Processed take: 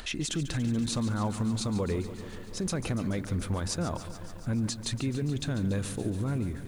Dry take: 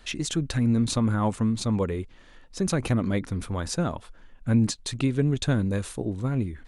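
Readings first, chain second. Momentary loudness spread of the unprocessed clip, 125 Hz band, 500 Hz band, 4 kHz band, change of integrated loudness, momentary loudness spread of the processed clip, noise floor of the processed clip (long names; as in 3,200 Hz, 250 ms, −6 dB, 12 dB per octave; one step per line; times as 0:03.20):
8 LU, −4.5 dB, −5.0 dB, −2.0 dB, −5.0 dB, 6 LU, −42 dBFS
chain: upward compression, threshold −37 dBFS
brickwall limiter −23 dBFS, peak gain reduction 11 dB
feedback echo at a low word length 143 ms, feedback 80%, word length 9 bits, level −13 dB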